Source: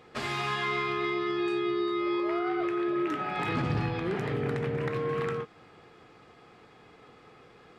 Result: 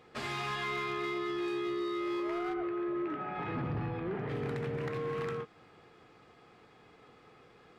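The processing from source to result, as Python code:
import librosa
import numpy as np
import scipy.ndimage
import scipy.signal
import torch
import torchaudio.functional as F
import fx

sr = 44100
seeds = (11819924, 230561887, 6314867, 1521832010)

p1 = 10.0 ** (-27.0 / 20.0) * (np.abs((x / 10.0 ** (-27.0 / 20.0) + 3.0) % 4.0 - 2.0) - 1.0)
p2 = x + (p1 * 10.0 ** (-4.0 / 20.0))
p3 = fx.bessel_lowpass(p2, sr, hz=1700.0, order=2, at=(2.53, 4.28), fade=0.02)
y = p3 * 10.0 ** (-8.5 / 20.0)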